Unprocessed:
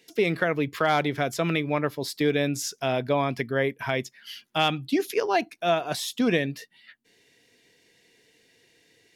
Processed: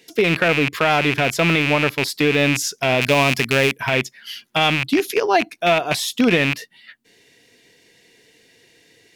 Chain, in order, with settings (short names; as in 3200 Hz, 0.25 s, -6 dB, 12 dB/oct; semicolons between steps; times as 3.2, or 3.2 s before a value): rattling part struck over -36 dBFS, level -16 dBFS; limiter -14 dBFS, peak gain reduction 3.5 dB; 3.01–3.78 tone controls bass +1 dB, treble +11 dB; gain +7.5 dB